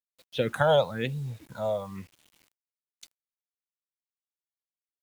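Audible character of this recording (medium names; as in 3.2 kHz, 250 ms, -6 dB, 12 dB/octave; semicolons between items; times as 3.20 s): phasing stages 4, 1 Hz, lowest notch 290–1600 Hz; a quantiser's noise floor 10-bit, dither none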